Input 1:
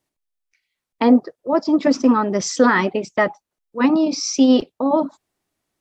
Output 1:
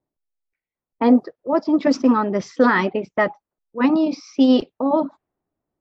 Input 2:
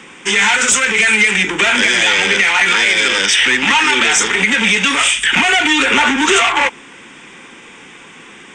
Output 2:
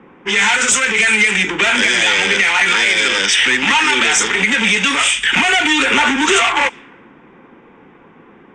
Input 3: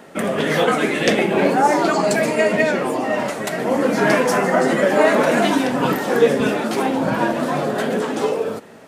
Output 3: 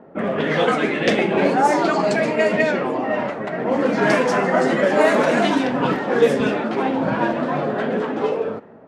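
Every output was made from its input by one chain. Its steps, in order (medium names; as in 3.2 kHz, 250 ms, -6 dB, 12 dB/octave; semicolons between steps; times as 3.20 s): level-controlled noise filter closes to 840 Hz, open at -9 dBFS; trim -1 dB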